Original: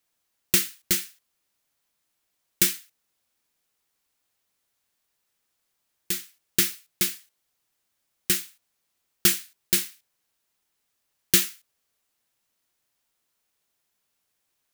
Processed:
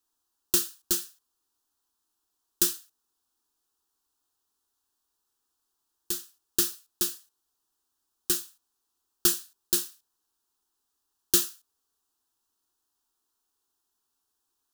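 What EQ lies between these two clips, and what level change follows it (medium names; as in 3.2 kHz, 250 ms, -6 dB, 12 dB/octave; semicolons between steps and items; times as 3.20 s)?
treble shelf 9.5 kHz -3.5 dB; static phaser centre 580 Hz, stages 6; 0.0 dB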